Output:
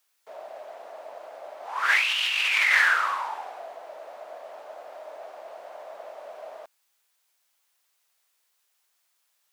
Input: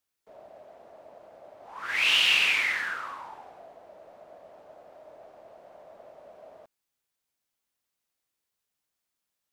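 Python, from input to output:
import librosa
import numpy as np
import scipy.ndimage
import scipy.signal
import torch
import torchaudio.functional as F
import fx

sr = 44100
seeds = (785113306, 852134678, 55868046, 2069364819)

y = scipy.signal.sosfilt(scipy.signal.butter(2, 670.0, 'highpass', fs=sr, output='sos'), x)
y = fx.over_compress(y, sr, threshold_db=-30.0, ratio=-1.0)
y = y * librosa.db_to_amplitude(7.5)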